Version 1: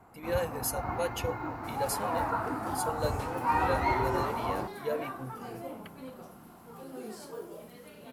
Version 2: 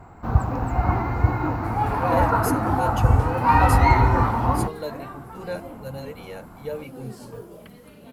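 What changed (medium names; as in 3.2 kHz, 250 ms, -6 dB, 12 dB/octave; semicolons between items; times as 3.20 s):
speech: entry +1.80 s; first sound +9.5 dB; master: add bass shelf 170 Hz +11.5 dB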